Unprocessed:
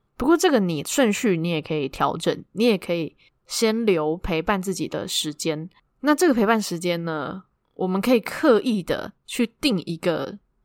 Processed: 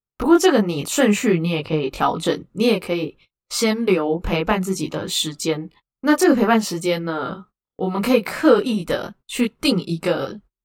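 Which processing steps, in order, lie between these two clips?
chorus voices 2, 0.58 Hz, delay 21 ms, depth 2.9 ms; gate -50 dBFS, range -29 dB; 7.84–8.50 s: short-mantissa float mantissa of 8-bit; trim +5.5 dB

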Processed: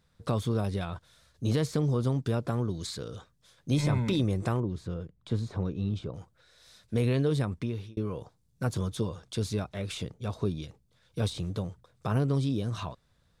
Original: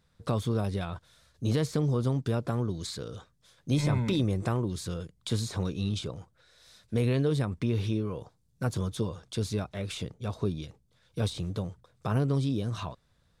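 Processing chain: 4.60–6.14 s: low-pass 1 kHz 6 dB/octave; 7.50–7.97 s: fade out

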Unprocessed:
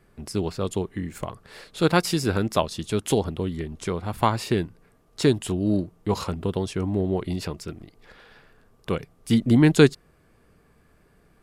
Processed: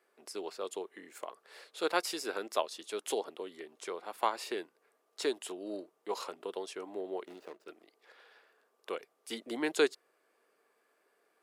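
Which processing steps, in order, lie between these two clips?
7.25–7.67 s: median filter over 41 samples; high-pass 390 Hz 24 dB/octave; trim -8.5 dB

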